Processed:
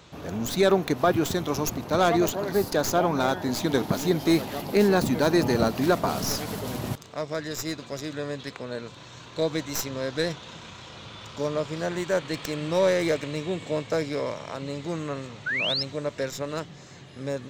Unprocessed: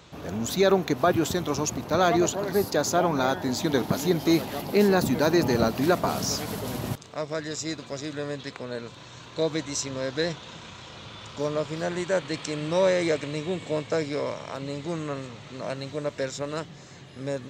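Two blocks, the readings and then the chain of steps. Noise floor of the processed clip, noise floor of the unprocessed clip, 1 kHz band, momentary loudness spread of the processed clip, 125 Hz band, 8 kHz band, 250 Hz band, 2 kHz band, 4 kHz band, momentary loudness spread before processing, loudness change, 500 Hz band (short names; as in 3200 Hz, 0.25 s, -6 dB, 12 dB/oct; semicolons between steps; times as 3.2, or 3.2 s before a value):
-46 dBFS, -46 dBFS, 0.0 dB, 14 LU, 0.0 dB, -1.5 dB, 0.0 dB, +1.0 dB, +1.5 dB, 15 LU, 0.0 dB, 0.0 dB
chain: tracing distortion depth 0.092 ms; painted sound rise, 15.46–15.83, 1400–5500 Hz -27 dBFS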